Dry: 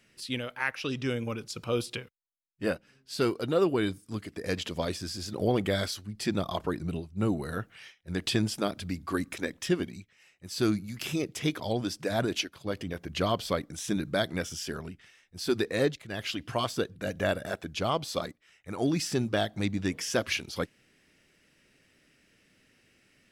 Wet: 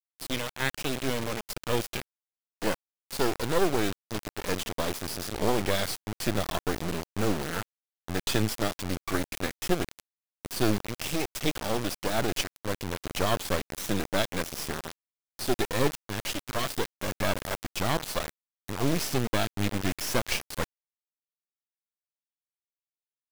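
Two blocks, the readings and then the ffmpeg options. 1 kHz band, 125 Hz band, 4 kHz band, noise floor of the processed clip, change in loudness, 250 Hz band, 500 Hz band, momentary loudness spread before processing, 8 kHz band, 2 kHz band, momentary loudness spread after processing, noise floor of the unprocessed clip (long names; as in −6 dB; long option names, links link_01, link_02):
+3.0 dB, +0.5 dB, +1.5 dB, below −85 dBFS, +1.0 dB, −1.0 dB, −0.5 dB, 9 LU, +4.5 dB, +1.5 dB, 8 LU, −66 dBFS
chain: -af "acrusher=bits=3:dc=4:mix=0:aa=0.000001,volume=4.5dB"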